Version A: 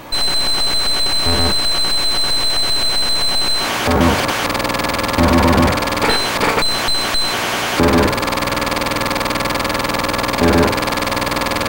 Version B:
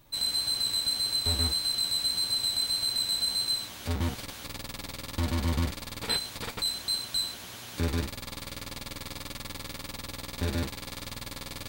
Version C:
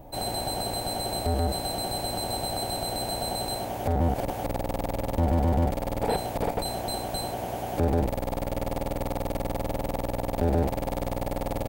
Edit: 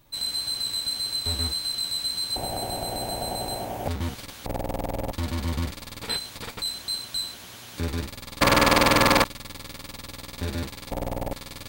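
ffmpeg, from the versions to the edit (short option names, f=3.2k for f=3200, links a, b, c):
-filter_complex "[2:a]asplit=3[a][b][c];[1:a]asplit=5[d][e][f][g][h];[d]atrim=end=2.362[i];[a]atrim=start=2.358:end=3.882[j];[e]atrim=start=3.878:end=4.462[k];[b]atrim=start=4.458:end=5.122[l];[f]atrim=start=5.118:end=8.412[m];[0:a]atrim=start=8.408:end=9.242[n];[g]atrim=start=9.238:end=10.912[o];[c]atrim=start=10.908:end=11.332[p];[h]atrim=start=11.328[q];[i][j]acrossfade=d=0.004:c1=hsin:c2=hsin[r];[r][k]acrossfade=d=0.004:c1=hsin:c2=hsin[s];[s][l]acrossfade=d=0.004:c1=hsin:c2=hsin[t];[t][m]acrossfade=d=0.004:c1=hsin:c2=hsin[u];[u][n]acrossfade=d=0.004:c1=hsin:c2=hsin[v];[v][o]acrossfade=d=0.004:c1=hsin:c2=hsin[w];[w][p]acrossfade=d=0.004:c1=hsin:c2=hsin[x];[x][q]acrossfade=d=0.004:c1=hsin:c2=hsin"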